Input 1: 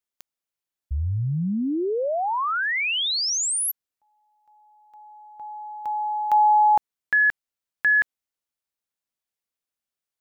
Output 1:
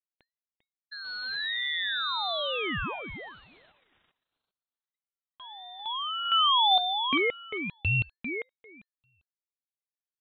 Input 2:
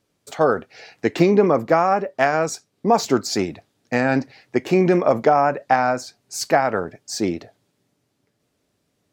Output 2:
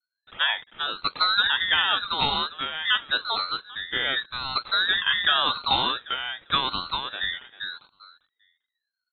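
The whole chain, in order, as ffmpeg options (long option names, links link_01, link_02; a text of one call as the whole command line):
ffmpeg -i in.wav -filter_complex "[0:a]acrossover=split=150[link_01][link_02];[link_01]asoftclip=type=tanh:threshold=-32dB[link_03];[link_02]acrusher=bits=6:mix=0:aa=0.000001[link_04];[link_03][link_04]amix=inputs=2:normalize=0,asplit=2[link_05][link_06];[link_06]adelay=397,lowpass=frequency=1800:poles=1,volume=-5dB,asplit=2[link_07][link_08];[link_08]adelay=397,lowpass=frequency=1800:poles=1,volume=0.17,asplit=2[link_09][link_10];[link_10]adelay=397,lowpass=frequency=1800:poles=1,volume=0.17[link_11];[link_05][link_07][link_09][link_11]amix=inputs=4:normalize=0,lowpass=frequency=2600:width_type=q:width=0.5098,lowpass=frequency=2600:width_type=q:width=0.6013,lowpass=frequency=2600:width_type=q:width=0.9,lowpass=frequency=2600:width_type=q:width=2.563,afreqshift=-3000,aeval=exprs='val(0)*sin(2*PI*1100*n/s+1100*0.3/0.88*sin(2*PI*0.88*n/s))':channel_layout=same,volume=-4dB" out.wav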